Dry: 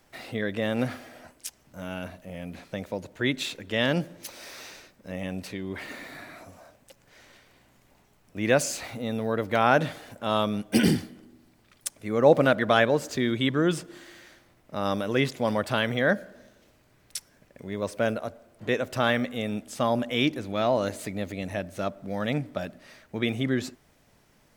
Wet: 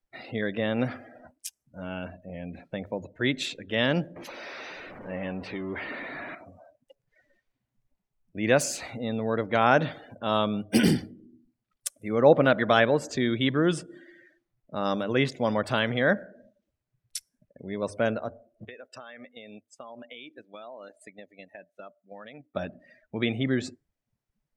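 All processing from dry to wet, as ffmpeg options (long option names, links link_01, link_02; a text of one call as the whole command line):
ffmpeg -i in.wav -filter_complex "[0:a]asettb=1/sr,asplit=3[link_01][link_02][link_03];[link_01]atrim=end=4.164[link_04];[link_02]atrim=start=4.16:end=6.35,asetpts=PTS-STARTPTS,afade=type=in:duration=0.004:curve=qsin,afade=type=out:start_time=2.186:duration=0.004:curve=qsin,aeval=exprs='val(0)+0.5*0.0178*sgn(val(0))':channel_layout=same,bass=frequency=250:gain=-5,treble=frequency=4000:gain=-11[link_05];[link_03]atrim=start=6.346[link_06];[link_04][link_05]acrossfade=duration=0.004:curve1=hsin:curve2=qsin[link_07];[link_07][link_06]acrossfade=duration=0.004:curve1=qsin:curve2=hsin,asettb=1/sr,asplit=3[link_08][link_09][link_10];[link_08]atrim=end=18.654[link_11];[link_09]atrim=start=18.65:end=22.55,asetpts=PTS-STARTPTS,afade=type=in:duration=0.004:curve=qsin,afade=type=out:start_time=3.896:duration=0.004:curve=qsin,highpass=frequency=720:poles=1,agate=range=-11dB:threshold=-40dB:ratio=16:release=100:detection=peak,acompressor=threshold=-38dB:ratio=16:attack=3.2:release=140:knee=1:detection=peak[link_12];[link_10]atrim=start=22.546[link_13];[link_11][link_12]acrossfade=duration=0.004:curve1=hsin:curve2=qsin[link_14];[link_14][link_13]acrossfade=duration=0.004:curve1=qsin:curve2=hsin,bandreject=frequency=50:width_type=h:width=6,bandreject=frequency=100:width_type=h:width=6,afftdn=noise_reduction=28:noise_floor=-46" out.wav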